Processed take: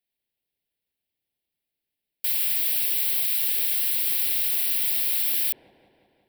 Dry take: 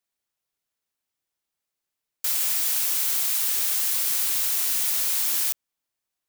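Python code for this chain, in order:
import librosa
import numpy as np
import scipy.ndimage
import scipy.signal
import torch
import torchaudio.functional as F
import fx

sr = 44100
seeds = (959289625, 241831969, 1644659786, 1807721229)

p1 = fx.fixed_phaser(x, sr, hz=2900.0, stages=4)
p2 = p1 + fx.echo_wet_lowpass(p1, sr, ms=180, feedback_pct=66, hz=740.0, wet_db=-5.0, dry=0)
y = p2 * librosa.db_to_amplitude(1.5)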